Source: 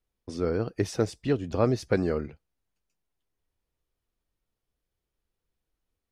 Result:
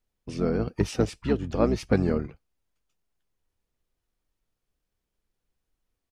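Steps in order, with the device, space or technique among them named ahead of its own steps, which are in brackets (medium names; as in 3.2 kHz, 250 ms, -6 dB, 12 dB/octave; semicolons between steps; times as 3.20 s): octave pedal (harmony voices -12 st -3 dB)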